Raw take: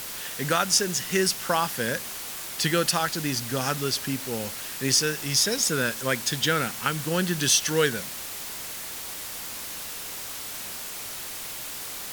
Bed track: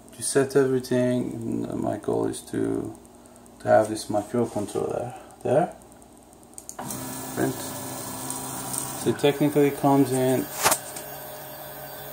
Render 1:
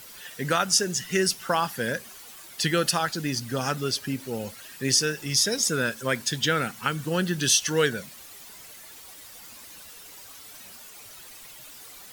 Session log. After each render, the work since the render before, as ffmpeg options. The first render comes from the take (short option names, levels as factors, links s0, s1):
-af "afftdn=nr=12:nf=-36"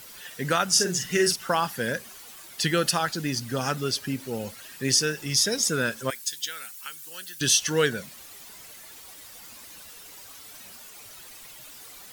-filter_complex "[0:a]asettb=1/sr,asplit=3[s0][s1][s2];[s0]atrim=end=0.714[s3];[s1]atrim=start=0.71:end=1.36,asetpts=PTS-STARTPTS,afade=t=in:d=0.004:c=qsin,afade=t=out:st=0.646:d=0.004:c=qsin,asplit=2[s4][s5];[s5]adelay=45,volume=0.501[s6];[s4][s6]amix=inputs=2:normalize=0,atrim=end_sample=28665[s7];[s2]atrim=start=1.356[s8];[s3][s7]acrossfade=d=0.004:c1=hsin:c2=qsin[s9];[s9][s8]acrossfade=d=0.004:c1=qsin:c2=hsin,asettb=1/sr,asplit=3[s10][s11][s12];[s10]atrim=end=6.104[s13];[s11]atrim=start=6.1:end=7.41,asetpts=PTS-STARTPTS,afade=t=in:d=0.004:c=qsin,afade=t=out:st=1.306:d=0.004:c=qsin,aderivative[s14];[s12]atrim=start=7.406[s15];[s13][s14]acrossfade=d=0.004:c1=hsin:c2=qsin[s16];[s16][s15]acrossfade=d=0.004:c1=qsin:c2=hsin"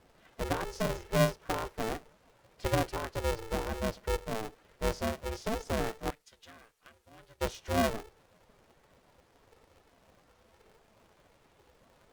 -af "bandpass=f=290:t=q:w=1.4:csg=0,aeval=exprs='val(0)*sgn(sin(2*PI*220*n/s))':c=same"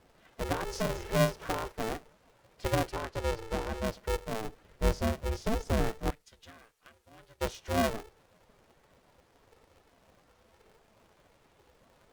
-filter_complex "[0:a]asettb=1/sr,asplit=3[s0][s1][s2];[s0]atrim=end=0.494[s3];[s1]atrim=start=0.49:end=1.72,asetpts=PTS-STARTPTS,afade=t=in:d=0.004:c=qsin,afade=t=out:st=1.226:d=0.004:c=qsin,acompressor=mode=upward:threshold=0.0316:ratio=2.5:attack=3.2:release=140:knee=2.83:detection=peak[s4];[s2]atrim=start=1.716[s5];[s3][s4]acrossfade=d=0.004:c1=hsin:c2=qsin[s6];[s6][s5]acrossfade=d=0.004:c1=qsin:c2=hsin,asettb=1/sr,asplit=3[s7][s8][s9];[s7]atrim=end=2.924[s10];[s8]atrim=start=2.92:end=3.85,asetpts=PTS-STARTPTS,afade=t=in:d=0.004:c=qsin,afade=t=out:st=0.926:d=0.004:c=qsin,highshelf=f=11000:g=-9.5[s11];[s9]atrim=start=3.846[s12];[s10][s11]acrossfade=d=0.004:c1=hsin:c2=qsin[s13];[s13][s12]acrossfade=d=0.004:c1=qsin:c2=hsin,asettb=1/sr,asplit=3[s14][s15][s16];[s14]atrim=end=4.444[s17];[s15]atrim=start=4.44:end=6.51,asetpts=PTS-STARTPTS,afade=t=in:d=0.004:c=qsin,afade=t=out:st=2.066:d=0.004:c=qsin,lowshelf=f=210:g=8[s18];[s16]atrim=start=6.506[s19];[s17][s18]acrossfade=d=0.004:c1=hsin:c2=qsin[s20];[s20][s19]acrossfade=d=0.004:c1=qsin:c2=hsin"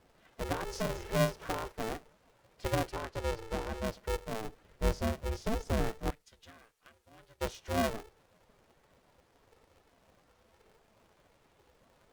-af "volume=0.75"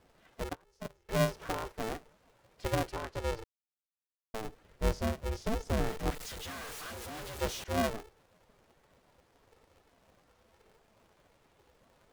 -filter_complex "[0:a]asettb=1/sr,asplit=3[s0][s1][s2];[s0]atrim=end=0.494[s3];[s1]atrim=start=0.49:end=1.09,asetpts=PTS-STARTPTS,afade=t=in:d=0.004:c=qsin,afade=t=out:st=0.596:d=0.004:c=qsin,agate=range=0.0398:threshold=0.0282:ratio=16:release=100:detection=peak[s4];[s2]atrim=start=1.086[s5];[s3][s4]acrossfade=d=0.004:c1=hsin:c2=qsin[s6];[s6][s5]acrossfade=d=0.004:c1=qsin:c2=hsin,asettb=1/sr,asplit=3[s7][s8][s9];[s7]atrim=end=5.904[s10];[s8]atrim=start=5.9:end=7.64,asetpts=PTS-STARTPTS,afade=t=in:d=0.004:c=qsin,afade=t=out:st=1.736:d=0.004:c=qsin,aeval=exprs='val(0)+0.5*0.0133*sgn(val(0))':c=same[s11];[s9]atrim=start=7.636[s12];[s10][s11]acrossfade=d=0.004:c1=hsin:c2=qsin[s13];[s13][s12]acrossfade=d=0.004:c1=qsin:c2=hsin,asplit=3[s14][s15][s16];[s14]atrim=end=3.44,asetpts=PTS-STARTPTS,afade=t=out:st=3.436:d=0.004:c=hsin[s17];[s15]atrim=start=3.44:end=4.34,asetpts=PTS-STARTPTS,volume=0[s18];[s16]atrim=start=4.34,asetpts=PTS-STARTPTS,afade=t=in:d=0.004:c=hsin[s19];[s17][s18][s19]concat=n=3:v=0:a=1"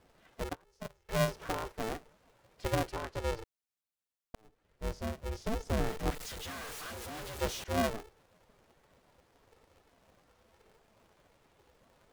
-filter_complex "[0:a]asettb=1/sr,asplit=3[s0][s1][s2];[s0]atrim=end=0.834[s3];[s1]atrim=start=0.83:end=1.28,asetpts=PTS-STARTPTS,afade=t=in:d=0.004:c=qsin,afade=t=out:st=0.446:d=0.004:c=qsin,equalizer=f=290:t=o:w=0.77:g=-9[s4];[s2]atrim=start=1.276[s5];[s3][s4]acrossfade=d=0.004:c1=hsin:c2=qsin[s6];[s6][s5]acrossfade=d=0.004:c1=qsin:c2=hsin,asplit=2[s7][s8];[s7]atrim=end=4.35,asetpts=PTS-STARTPTS,afade=t=out:st=4.346:d=0.004:c=hsin[s9];[s8]atrim=start=4.35,asetpts=PTS-STARTPTS,afade=t=in:d=1.84:c=qsin[s10];[s9][s10]concat=n=2:v=0:a=1"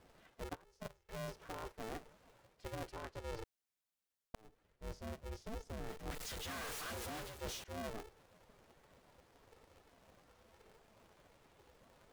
-af "alimiter=limit=0.0708:level=0:latency=1:release=442,areverse,acompressor=threshold=0.00708:ratio=5,areverse"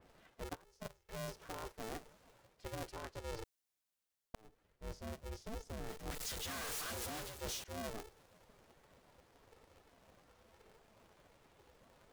-af "adynamicequalizer=threshold=0.00112:dfrequency=3800:dqfactor=0.7:tfrequency=3800:tqfactor=0.7:attack=5:release=100:ratio=0.375:range=2.5:mode=boostabove:tftype=highshelf"